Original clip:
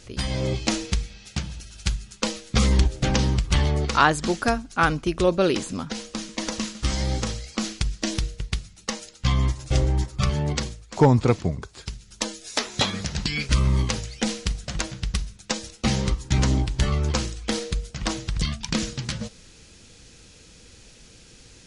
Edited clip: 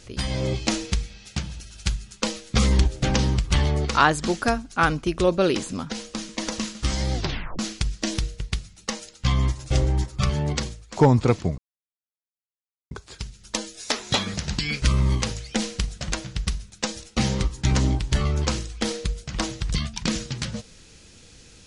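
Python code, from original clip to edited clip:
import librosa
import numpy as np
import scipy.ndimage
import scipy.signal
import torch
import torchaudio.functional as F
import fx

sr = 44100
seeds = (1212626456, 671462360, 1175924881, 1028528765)

y = fx.edit(x, sr, fx.tape_stop(start_s=7.14, length_s=0.45),
    fx.insert_silence(at_s=11.58, length_s=1.33), tone=tone)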